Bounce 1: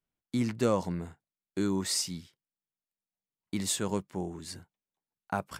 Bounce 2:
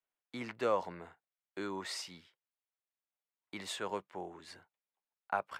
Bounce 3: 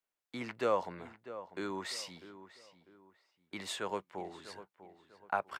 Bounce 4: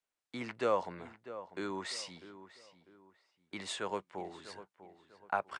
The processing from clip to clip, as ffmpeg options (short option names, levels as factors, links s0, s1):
-filter_complex "[0:a]acrossover=split=450 3500:gain=0.112 1 0.141[s0][s1][s2];[s0][s1][s2]amix=inputs=3:normalize=0"
-filter_complex "[0:a]asplit=2[s0][s1];[s1]adelay=647,lowpass=f=2300:p=1,volume=0.211,asplit=2[s2][s3];[s3]adelay=647,lowpass=f=2300:p=1,volume=0.35,asplit=2[s4][s5];[s5]adelay=647,lowpass=f=2300:p=1,volume=0.35[s6];[s0][s2][s4][s6]amix=inputs=4:normalize=0,volume=1.12"
-af "aresample=22050,aresample=44100"